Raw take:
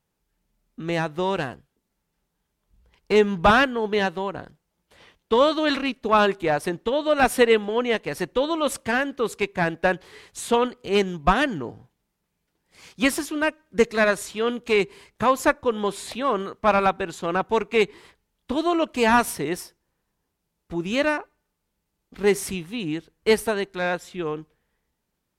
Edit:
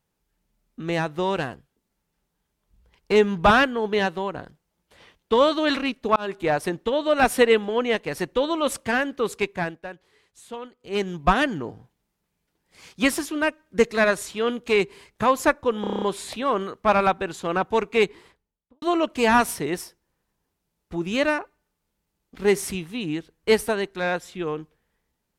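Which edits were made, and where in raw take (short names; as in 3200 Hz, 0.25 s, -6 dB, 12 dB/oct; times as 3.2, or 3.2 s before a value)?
6.16–6.45 fade in
9.45–11.18 dip -15.5 dB, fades 0.39 s
15.81 stutter 0.03 s, 8 plays
17.81–18.61 studio fade out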